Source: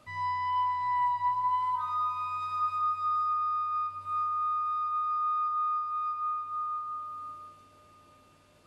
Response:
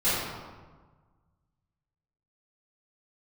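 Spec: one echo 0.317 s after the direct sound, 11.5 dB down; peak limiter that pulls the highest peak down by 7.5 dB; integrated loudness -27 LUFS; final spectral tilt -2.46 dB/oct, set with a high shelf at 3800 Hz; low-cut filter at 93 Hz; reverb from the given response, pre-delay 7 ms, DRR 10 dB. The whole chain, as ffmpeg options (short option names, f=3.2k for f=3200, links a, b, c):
-filter_complex "[0:a]highpass=93,highshelf=f=3.8k:g=7.5,alimiter=level_in=4dB:limit=-24dB:level=0:latency=1,volume=-4dB,aecho=1:1:317:0.266,asplit=2[a][b];[1:a]atrim=start_sample=2205,adelay=7[c];[b][c]afir=irnorm=-1:irlink=0,volume=-24dB[d];[a][d]amix=inputs=2:normalize=0,volume=5dB"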